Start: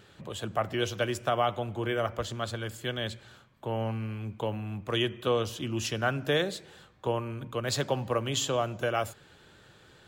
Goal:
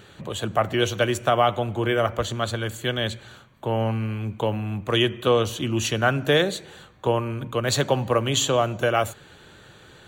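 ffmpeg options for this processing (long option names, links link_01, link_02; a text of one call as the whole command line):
ffmpeg -i in.wav -af "asuperstop=centerf=5100:order=8:qfactor=7.3,acontrast=41,volume=2dB" out.wav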